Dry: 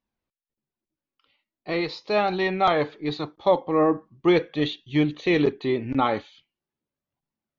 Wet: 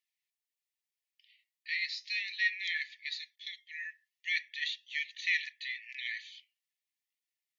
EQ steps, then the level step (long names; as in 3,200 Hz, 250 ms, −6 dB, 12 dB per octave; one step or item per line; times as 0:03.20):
linear-phase brick-wall high-pass 1,700 Hz
dynamic equaliser 3,200 Hz, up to −8 dB, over −47 dBFS, Q 1.7
+2.5 dB